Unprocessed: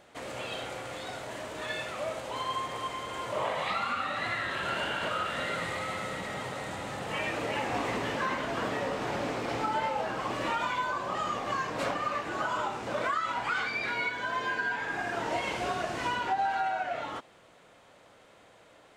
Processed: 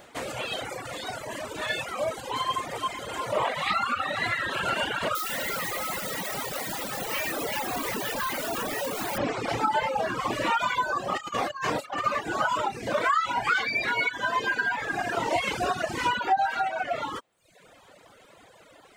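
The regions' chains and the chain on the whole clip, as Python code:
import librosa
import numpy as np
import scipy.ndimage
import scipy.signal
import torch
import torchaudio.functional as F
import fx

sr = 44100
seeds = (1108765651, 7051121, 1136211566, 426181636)

y = fx.chain(x, sr, fx.highpass(hz=150.0, slope=12),
    fx.quant_companded(bits=2),
    fx.clip_hard(threshold_db=-33.0), at=(5.15, 9.18))
y = fx.chain(y, sr, fx.low_shelf(hz=200.0, db=-4.5),
    fx.over_compress(threshold_db=-35.0, ratio=-0.5),
    fx.room_flutter(wall_m=5.8, rt60_s=0.21), at=(11.16, 12.04))
y = fx.dereverb_blind(y, sr, rt60_s=0.99)
y = fx.high_shelf(y, sr, hz=12000.0, db=10.5)
y = fx.dereverb_blind(y, sr, rt60_s=0.71)
y = F.gain(torch.from_numpy(y), 7.5).numpy()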